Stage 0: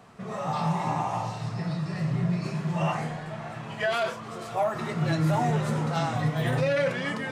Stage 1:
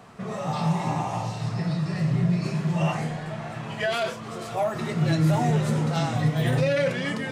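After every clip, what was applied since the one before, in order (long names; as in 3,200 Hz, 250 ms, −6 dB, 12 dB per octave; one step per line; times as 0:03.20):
dynamic equaliser 1,100 Hz, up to −6 dB, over −41 dBFS, Q 0.83
level +4 dB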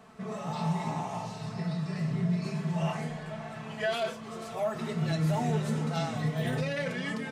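comb filter 4.6 ms, depth 55%
level −7 dB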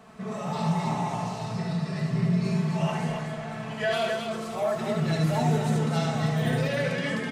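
loudspeakers that aren't time-aligned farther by 25 metres −4 dB, 91 metres −5 dB
level +2.5 dB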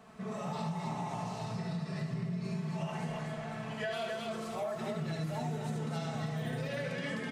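downward compressor, threshold −28 dBFS, peak gain reduction 8.5 dB
level −5 dB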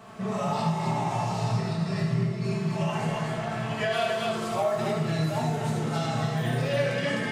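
convolution reverb RT60 0.55 s, pre-delay 4 ms, DRR 0 dB
level +7.5 dB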